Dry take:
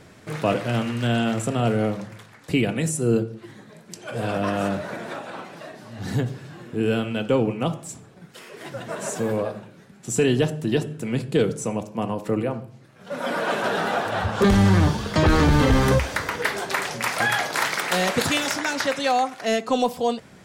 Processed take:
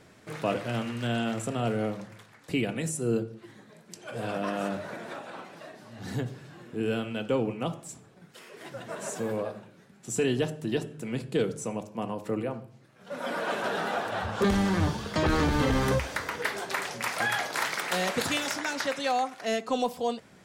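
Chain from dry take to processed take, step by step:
low-shelf EQ 150 Hz −3.5 dB
mains-hum notches 50/100/150 Hz
level −6 dB

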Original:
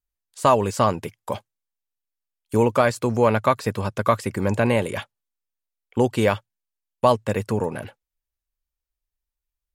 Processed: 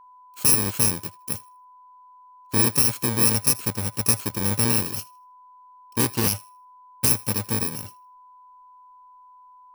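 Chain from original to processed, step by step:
samples in bit-reversed order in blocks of 64 samples
feedback echo with a high-pass in the loop 79 ms, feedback 24%, high-pass 850 Hz, level −21.5 dB
steady tone 1,000 Hz −46 dBFS
0:06.00–0:07.10: highs frequency-modulated by the lows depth 0.28 ms
level −1.5 dB

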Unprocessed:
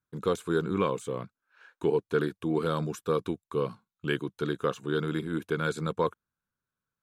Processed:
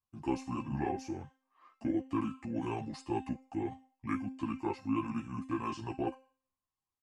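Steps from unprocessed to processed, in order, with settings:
tuned comb filter 360 Hz, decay 0.45 s, harmonics all, mix 80%
pitch shifter −5.5 semitones
string-ensemble chorus
level +9 dB

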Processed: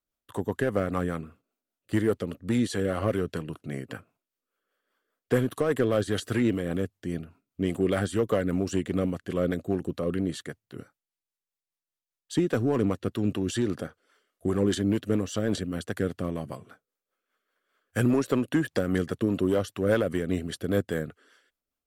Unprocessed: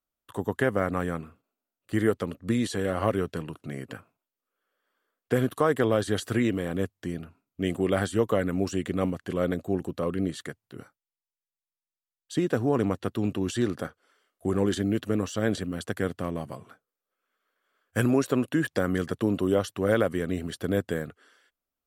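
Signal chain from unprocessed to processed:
in parallel at −10 dB: wave folding −20 dBFS
on the sum: rotating-speaker cabinet horn 5 Hz

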